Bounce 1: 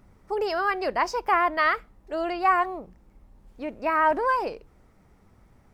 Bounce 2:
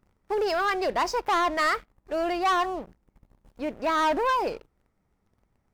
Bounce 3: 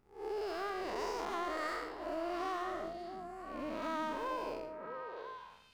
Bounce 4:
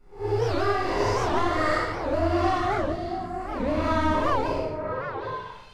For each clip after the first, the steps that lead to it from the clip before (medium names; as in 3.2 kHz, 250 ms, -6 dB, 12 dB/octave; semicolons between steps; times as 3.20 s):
waveshaping leveller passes 3; trim -8.5 dB
spectral blur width 220 ms; compression, threshold -35 dBFS, peak gain reduction 10 dB; repeats whose band climbs or falls 336 ms, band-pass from 200 Hz, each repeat 1.4 oct, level 0 dB; trim -1.5 dB
octave divider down 2 oct, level -3 dB; reverberation RT60 0.50 s, pre-delay 3 ms, DRR -11 dB; warped record 78 rpm, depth 250 cents; trim -3.5 dB